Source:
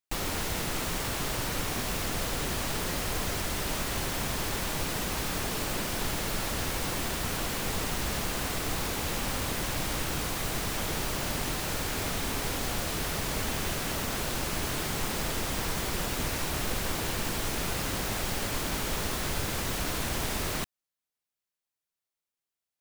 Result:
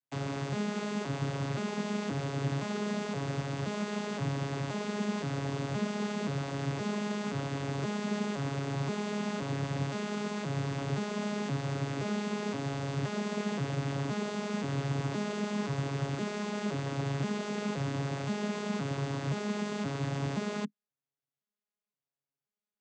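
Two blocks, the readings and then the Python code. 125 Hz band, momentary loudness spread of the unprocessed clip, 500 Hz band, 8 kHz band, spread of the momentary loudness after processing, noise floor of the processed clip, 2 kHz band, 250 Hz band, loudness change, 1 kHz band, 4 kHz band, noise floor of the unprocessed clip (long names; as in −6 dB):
+2.5 dB, 0 LU, +0.5 dB, −14.5 dB, 2 LU, below −85 dBFS, −6.5 dB, +3.5 dB, −3.5 dB, −4.0 dB, −10.0 dB, below −85 dBFS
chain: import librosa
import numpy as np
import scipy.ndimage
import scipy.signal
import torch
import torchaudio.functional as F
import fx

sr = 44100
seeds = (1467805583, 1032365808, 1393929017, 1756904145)

y = fx.vocoder_arp(x, sr, chord='bare fifth', root=49, every_ms=522)
y = F.gain(torch.from_numpy(y), 1.0).numpy()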